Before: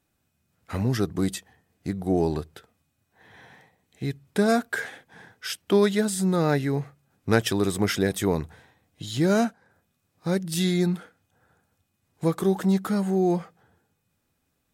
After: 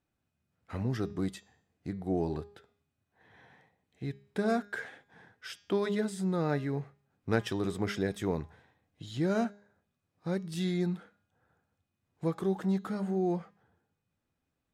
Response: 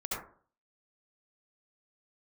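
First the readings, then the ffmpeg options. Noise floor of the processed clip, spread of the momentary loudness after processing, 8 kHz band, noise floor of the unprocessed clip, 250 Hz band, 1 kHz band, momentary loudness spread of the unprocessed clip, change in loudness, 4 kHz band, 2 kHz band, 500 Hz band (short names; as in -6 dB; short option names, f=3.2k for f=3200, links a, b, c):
-83 dBFS, 15 LU, -16.0 dB, -75 dBFS, -8.0 dB, -8.0 dB, 13 LU, -8.0 dB, -11.5 dB, -8.5 dB, -8.0 dB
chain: -af "aemphasis=mode=reproduction:type=50kf,bandreject=f=204.2:t=h:w=4,bandreject=f=408.4:t=h:w=4,bandreject=f=612.6:t=h:w=4,bandreject=f=816.8:t=h:w=4,bandreject=f=1.021k:t=h:w=4,bandreject=f=1.2252k:t=h:w=4,bandreject=f=1.4294k:t=h:w=4,bandreject=f=1.6336k:t=h:w=4,bandreject=f=1.8378k:t=h:w=4,bandreject=f=2.042k:t=h:w=4,bandreject=f=2.2462k:t=h:w=4,bandreject=f=2.4504k:t=h:w=4,bandreject=f=2.6546k:t=h:w=4,bandreject=f=2.8588k:t=h:w=4,bandreject=f=3.063k:t=h:w=4,bandreject=f=3.2672k:t=h:w=4,bandreject=f=3.4714k:t=h:w=4,bandreject=f=3.6756k:t=h:w=4,bandreject=f=3.8798k:t=h:w=4,bandreject=f=4.084k:t=h:w=4,bandreject=f=4.2882k:t=h:w=4,bandreject=f=4.4924k:t=h:w=4,bandreject=f=4.6966k:t=h:w=4,bandreject=f=4.9008k:t=h:w=4,bandreject=f=5.105k:t=h:w=4,bandreject=f=5.3092k:t=h:w=4,bandreject=f=5.5134k:t=h:w=4,bandreject=f=5.7176k:t=h:w=4,bandreject=f=5.9218k:t=h:w=4,bandreject=f=6.126k:t=h:w=4,bandreject=f=6.3302k:t=h:w=4,bandreject=f=6.5344k:t=h:w=4,bandreject=f=6.7386k:t=h:w=4,bandreject=f=6.9428k:t=h:w=4,bandreject=f=7.147k:t=h:w=4,bandreject=f=7.3512k:t=h:w=4,bandreject=f=7.5554k:t=h:w=4,volume=-7.5dB"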